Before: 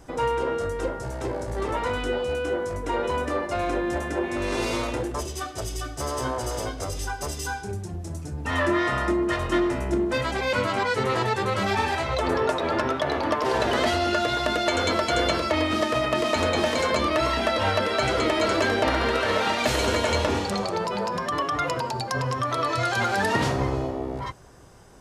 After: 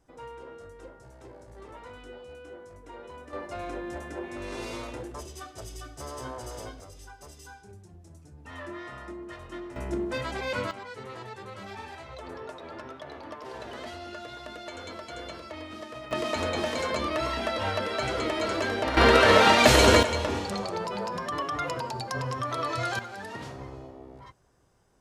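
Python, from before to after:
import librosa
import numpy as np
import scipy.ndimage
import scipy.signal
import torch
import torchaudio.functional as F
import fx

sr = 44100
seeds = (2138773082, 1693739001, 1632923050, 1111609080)

y = fx.gain(x, sr, db=fx.steps((0.0, -18.5), (3.33, -10.0), (6.8, -17.0), (9.76, -6.5), (10.71, -17.0), (16.11, -6.0), (18.97, 6.0), (20.03, -5.0), (22.99, -16.0)))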